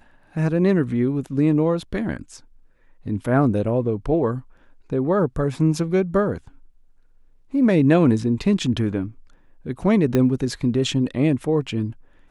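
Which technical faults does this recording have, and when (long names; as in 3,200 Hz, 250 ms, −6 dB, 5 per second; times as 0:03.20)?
0:10.15: click −8 dBFS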